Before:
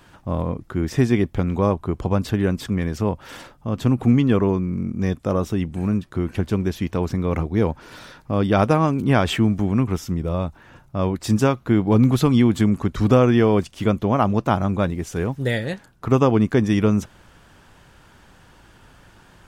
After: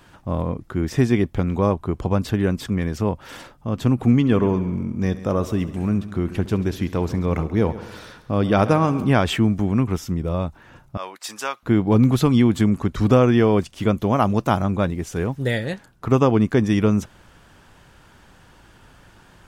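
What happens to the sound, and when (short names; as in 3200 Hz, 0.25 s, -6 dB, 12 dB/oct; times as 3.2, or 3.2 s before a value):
4.15–9.09 multi-head echo 68 ms, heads first and second, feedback 53%, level -18 dB
10.97–11.63 HPF 980 Hz
13.98–14.62 high shelf 5900 Hz +9 dB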